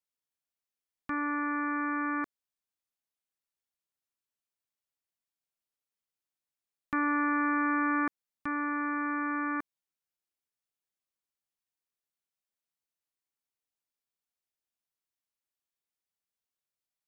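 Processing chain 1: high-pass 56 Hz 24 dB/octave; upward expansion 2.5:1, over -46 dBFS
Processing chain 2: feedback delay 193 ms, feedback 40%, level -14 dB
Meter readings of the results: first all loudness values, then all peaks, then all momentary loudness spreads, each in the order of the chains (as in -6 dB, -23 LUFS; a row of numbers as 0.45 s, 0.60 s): -32.5 LUFS, -31.5 LUFS; -19.0 dBFS, -20.0 dBFS; 14 LU, 12 LU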